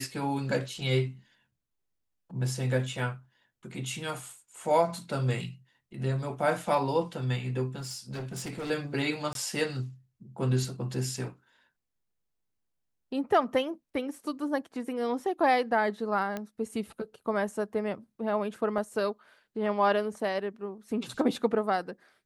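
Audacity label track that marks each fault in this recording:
7.750000	8.710000	clipped -33 dBFS
9.330000	9.350000	dropout 22 ms
16.370000	16.370000	pop -20 dBFS
18.780000	18.780000	dropout 2.9 ms

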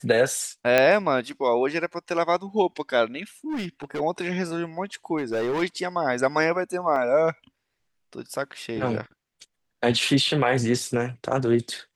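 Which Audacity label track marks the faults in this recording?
0.780000	0.780000	pop -5 dBFS
3.490000	4.010000	clipped -26 dBFS
5.170000	5.630000	clipped -22.5 dBFS
6.960000	6.960000	dropout 2.7 ms

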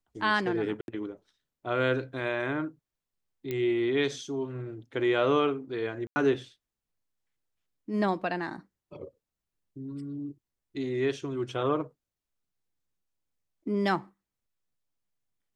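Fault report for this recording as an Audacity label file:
0.810000	0.880000	dropout 71 ms
3.510000	3.510000	pop -20 dBFS
6.070000	6.160000	dropout 90 ms

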